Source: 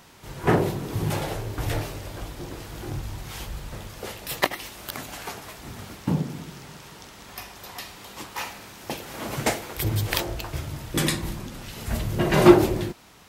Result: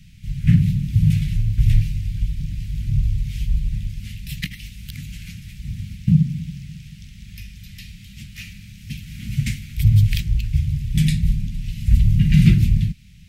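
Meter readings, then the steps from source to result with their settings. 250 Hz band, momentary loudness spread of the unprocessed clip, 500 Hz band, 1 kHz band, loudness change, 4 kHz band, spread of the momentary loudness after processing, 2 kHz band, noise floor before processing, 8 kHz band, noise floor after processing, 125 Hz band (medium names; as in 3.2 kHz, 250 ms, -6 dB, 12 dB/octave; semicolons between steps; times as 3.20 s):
+2.5 dB, 17 LU, under -25 dB, under -30 dB, +6.0 dB, -3.0 dB, 21 LU, -5.0 dB, -46 dBFS, -6.0 dB, -42 dBFS, +12.0 dB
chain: elliptic band-stop 180–2300 Hz, stop band 50 dB; tilt EQ -3 dB/octave; trim +3.5 dB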